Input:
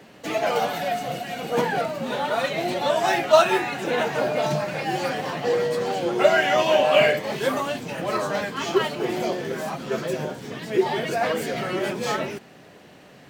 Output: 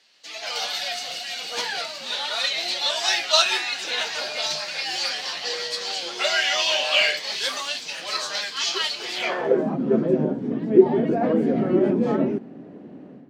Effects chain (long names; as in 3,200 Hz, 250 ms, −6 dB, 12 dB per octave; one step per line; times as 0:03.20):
band-pass filter sweep 4,600 Hz → 260 Hz, 0:09.13–0:09.65
automatic gain control gain up to 12 dB
level +2.5 dB